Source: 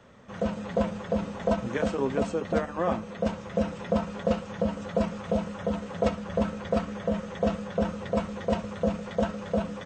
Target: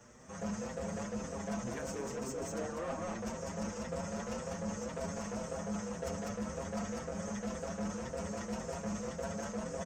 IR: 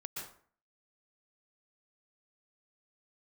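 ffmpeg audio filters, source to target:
-filter_complex "[0:a]highshelf=f=4.8k:t=q:w=3:g=8.5,bandreject=f=45.86:t=h:w=4,bandreject=f=91.72:t=h:w=4,bandreject=f=137.58:t=h:w=4,bandreject=f=183.44:t=h:w=4,bandreject=f=229.3:t=h:w=4,bandreject=f=275.16:t=h:w=4,bandreject=f=321.02:t=h:w=4,bandreject=f=366.88:t=h:w=4,bandreject=f=412.74:t=h:w=4,bandreject=f=458.6:t=h:w=4,bandreject=f=504.46:t=h:w=4,bandreject=f=550.32:t=h:w=4,bandreject=f=596.18:t=h:w=4,bandreject=f=642.04:t=h:w=4,bandreject=f=687.9:t=h:w=4,bandreject=f=733.76:t=h:w=4,bandreject=f=779.62:t=h:w=4,bandreject=f=825.48:t=h:w=4,bandreject=f=871.34:t=h:w=4,bandreject=f=917.2:t=h:w=4,bandreject=f=963.06:t=h:w=4,bandreject=f=1.00892k:t=h:w=4,bandreject=f=1.05478k:t=h:w=4,bandreject=f=1.10064k:t=h:w=4,bandreject=f=1.1465k:t=h:w=4,bandreject=f=1.19236k:t=h:w=4,bandreject=f=1.23822k:t=h:w=4,bandreject=f=1.28408k:t=h:w=4,bandreject=f=1.32994k:t=h:w=4,bandreject=f=1.3758k:t=h:w=4,bandreject=f=1.42166k:t=h:w=4,bandreject=f=1.46752k:t=h:w=4,bandreject=f=1.51338k:t=h:w=4,bandreject=f=1.55924k:t=h:w=4,bandreject=f=1.6051k:t=h:w=4,bandreject=f=1.65096k:t=h:w=4,bandreject=f=1.69682k:t=h:w=4,asoftclip=type=tanh:threshold=-27dB,aecho=1:1:199:0.668,areverse,acompressor=threshold=-33dB:ratio=6,areverse,asplit=2[a][b];[b]adelay=6.5,afreqshift=1.9[c];[a][c]amix=inputs=2:normalize=1"

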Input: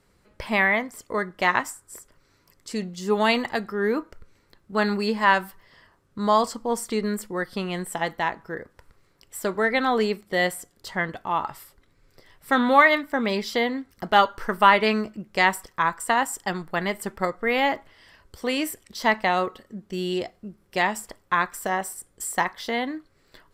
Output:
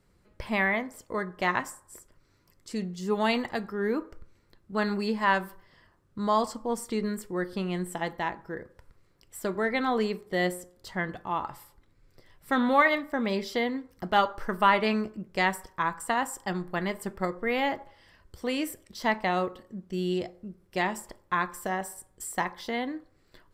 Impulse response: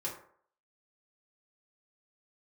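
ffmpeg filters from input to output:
-filter_complex "[0:a]lowshelf=f=350:g=6,asplit=2[a][b];[1:a]atrim=start_sample=2205[c];[b][c]afir=irnorm=-1:irlink=0,volume=-14dB[d];[a][d]amix=inputs=2:normalize=0,volume=-7.5dB"

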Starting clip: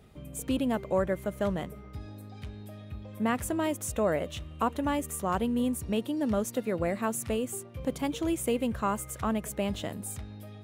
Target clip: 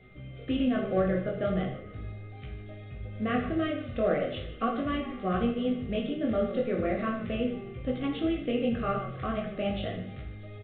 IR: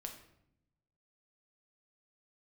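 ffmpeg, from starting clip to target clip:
-filter_complex "[0:a]flanger=delay=16:depth=6:speed=0.39,asplit=5[a][b][c][d][e];[b]adelay=151,afreqshift=-43,volume=-14.5dB[f];[c]adelay=302,afreqshift=-86,volume=-21.8dB[g];[d]adelay=453,afreqshift=-129,volume=-29.2dB[h];[e]adelay=604,afreqshift=-172,volume=-36.5dB[i];[a][f][g][h][i]amix=inputs=5:normalize=0,asplit=2[j][k];[k]asoftclip=type=tanh:threshold=-25.5dB,volume=-8dB[l];[j][l]amix=inputs=2:normalize=0,aeval=exprs='val(0)+0.00112*sin(2*PI*2100*n/s)':c=same,asuperstop=centerf=940:order=12:qfactor=3.4[m];[1:a]atrim=start_sample=2205,atrim=end_sample=4410,asetrate=33516,aresample=44100[n];[m][n]afir=irnorm=-1:irlink=0,volume=3dB" -ar 8000 -c:a pcm_alaw

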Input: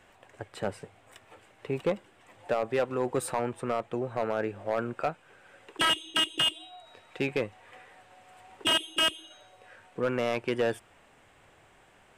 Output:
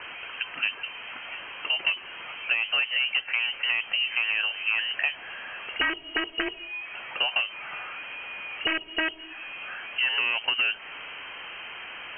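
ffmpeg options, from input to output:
-filter_complex "[0:a]aeval=exprs='val(0)+0.5*0.00631*sgn(val(0))':c=same,acrossover=split=110|240|2400[a][b][c][d];[a]acompressor=threshold=-57dB:ratio=4[e];[b]acompressor=threshold=-53dB:ratio=4[f];[c]acompressor=threshold=-33dB:ratio=4[g];[d]acompressor=threshold=-49dB:ratio=4[h];[e][f][g][h]amix=inputs=4:normalize=0,lowpass=f=2.7k:t=q:w=0.5098,lowpass=f=2.7k:t=q:w=0.6013,lowpass=f=2.7k:t=q:w=0.9,lowpass=f=2.7k:t=q:w=2.563,afreqshift=-3200,volume=9dB"

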